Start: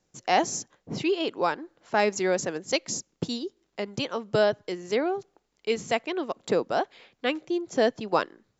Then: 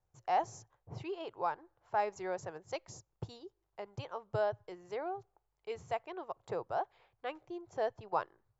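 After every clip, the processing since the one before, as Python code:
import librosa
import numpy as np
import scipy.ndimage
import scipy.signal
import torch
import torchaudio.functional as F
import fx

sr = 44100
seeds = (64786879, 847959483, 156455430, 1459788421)

y = fx.curve_eq(x, sr, hz=(110.0, 240.0, 360.0, 530.0, 850.0, 1900.0, 3900.0), db=(0, -28, -15, -13, -5, -16, -21))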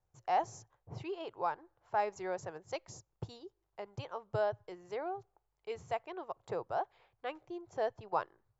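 y = x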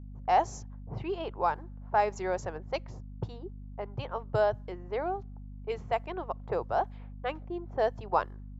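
y = fx.env_lowpass(x, sr, base_hz=790.0, full_db=-32.5)
y = fx.add_hum(y, sr, base_hz=50, snr_db=11)
y = y * 10.0 ** (6.5 / 20.0)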